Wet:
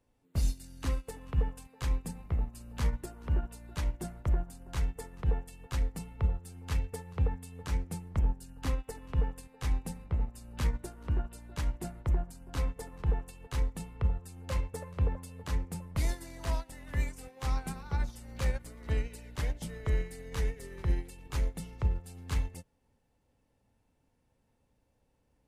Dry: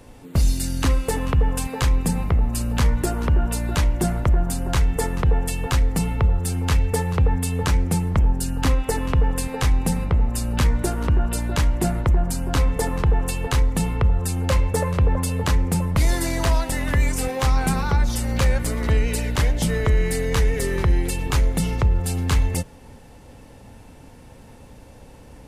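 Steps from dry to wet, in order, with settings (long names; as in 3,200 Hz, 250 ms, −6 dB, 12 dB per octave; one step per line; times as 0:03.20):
expander for the loud parts 2.5 to 1, over −27 dBFS
level −8 dB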